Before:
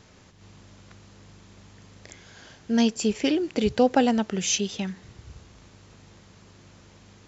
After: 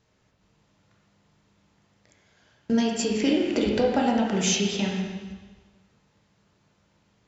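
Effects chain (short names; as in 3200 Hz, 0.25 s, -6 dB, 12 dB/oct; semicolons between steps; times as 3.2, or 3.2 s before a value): gate -39 dBFS, range -20 dB; compressor 5:1, threshold -27 dBFS, peak gain reduction 12 dB; reverb RT60 1.4 s, pre-delay 5 ms, DRR -1.5 dB; gain +4 dB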